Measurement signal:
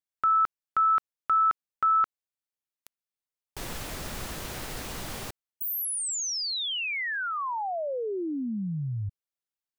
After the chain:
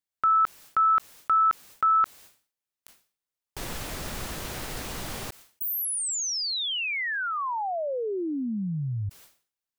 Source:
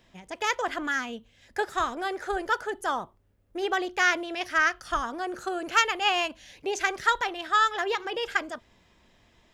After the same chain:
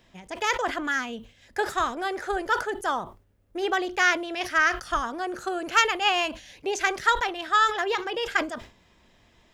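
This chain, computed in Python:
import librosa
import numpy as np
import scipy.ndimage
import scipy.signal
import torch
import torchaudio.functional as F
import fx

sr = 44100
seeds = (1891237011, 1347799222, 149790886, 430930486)

y = fx.sustainer(x, sr, db_per_s=140.0)
y = F.gain(torch.from_numpy(y), 1.5).numpy()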